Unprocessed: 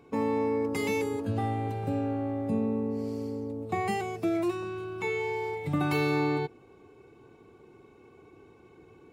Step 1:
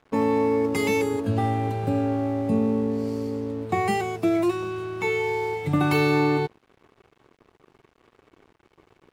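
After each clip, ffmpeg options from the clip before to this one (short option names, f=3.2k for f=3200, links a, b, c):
-af "aeval=exprs='sgn(val(0))*max(abs(val(0))-0.00237,0)':c=same,volume=6.5dB"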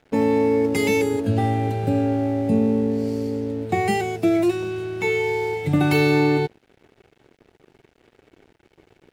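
-af "equalizer=f=1.1k:w=3.5:g=-11.5,volume=3.5dB"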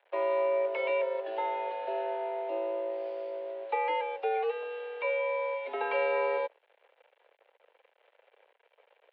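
-filter_complex "[0:a]acrossover=split=2300[a][b];[b]acompressor=threshold=-43dB:ratio=6[c];[a][c]amix=inputs=2:normalize=0,highpass=f=400:t=q:w=0.5412,highpass=f=400:t=q:w=1.307,lowpass=f=3.4k:t=q:w=0.5176,lowpass=f=3.4k:t=q:w=0.7071,lowpass=f=3.4k:t=q:w=1.932,afreqshift=110,volume=-6dB"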